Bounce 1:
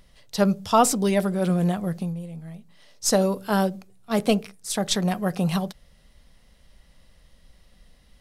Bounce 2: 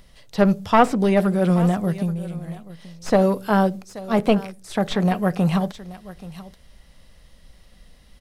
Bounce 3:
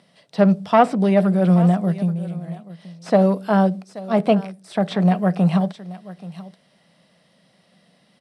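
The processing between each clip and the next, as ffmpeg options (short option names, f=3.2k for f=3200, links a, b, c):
-filter_complex "[0:a]aeval=exprs='clip(val(0),-1,0.106)':c=same,aecho=1:1:830:0.126,acrossover=split=2900[a][b];[b]acompressor=threshold=-47dB:ratio=4:attack=1:release=60[c];[a][c]amix=inputs=2:normalize=0,volume=4.5dB"
-af "highpass=f=150:w=0.5412,highpass=f=150:w=1.3066,equalizer=f=180:t=q:w=4:g=7,equalizer=f=660:t=q:w=4:g=7,equalizer=f=6.7k:t=q:w=4:g=-9,lowpass=f=9.5k:w=0.5412,lowpass=f=9.5k:w=1.3066,volume=-2dB"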